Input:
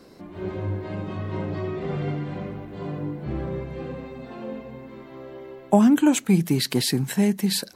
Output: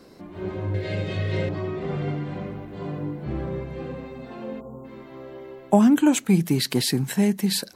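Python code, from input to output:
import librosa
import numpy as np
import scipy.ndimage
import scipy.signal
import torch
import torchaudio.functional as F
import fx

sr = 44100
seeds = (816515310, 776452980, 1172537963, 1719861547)

y = fx.graphic_eq(x, sr, hz=(125, 250, 500, 1000, 2000, 4000, 8000), db=(9, -8, 11, -11, 10, 10, 9), at=(0.74, 1.49))
y = fx.spec_erase(y, sr, start_s=4.6, length_s=0.25, low_hz=1400.0, high_hz=6600.0)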